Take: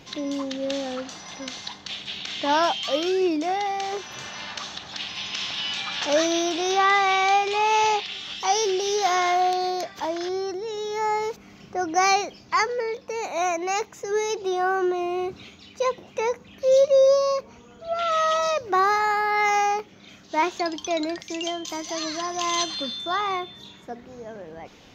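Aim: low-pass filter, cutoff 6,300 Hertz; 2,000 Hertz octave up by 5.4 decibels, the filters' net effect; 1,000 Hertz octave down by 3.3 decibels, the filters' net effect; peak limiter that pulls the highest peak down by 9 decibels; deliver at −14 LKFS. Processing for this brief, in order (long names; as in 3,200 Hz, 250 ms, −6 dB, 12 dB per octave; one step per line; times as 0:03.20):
low-pass filter 6,300 Hz
parametric band 1,000 Hz −6.5 dB
parametric band 2,000 Hz +8 dB
level +12 dB
brickwall limiter −4 dBFS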